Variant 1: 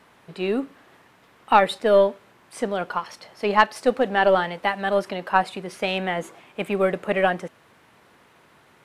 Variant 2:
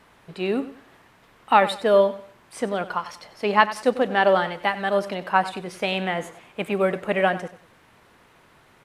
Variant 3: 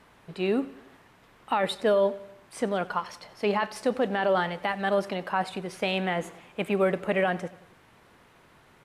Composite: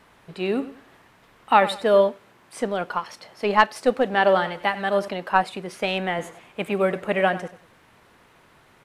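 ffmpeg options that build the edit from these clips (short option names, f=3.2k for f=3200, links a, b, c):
-filter_complex "[0:a]asplit=2[a][b];[1:a]asplit=3[c][d][e];[c]atrim=end=2.092[f];[a]atrim=start=2.088:end=4.142[g];[d]atrim=start=4.138:end=5.082[h];[b]atrim=start=5.078:end=6.192[i];[e]atrim=start=6.188[j];[f][g]acrossfade=d=0.004:c1=hsin:c2=hsin[k];[k][h]acrossfade=d=0.004:c1=hsin:c2=hsin[l];[l][i]acrossfade=d=0.004:c1=hsin:c2=hsin[m];[m][j]acrossfade=d=0.004:c1=hsin:c2=hsin"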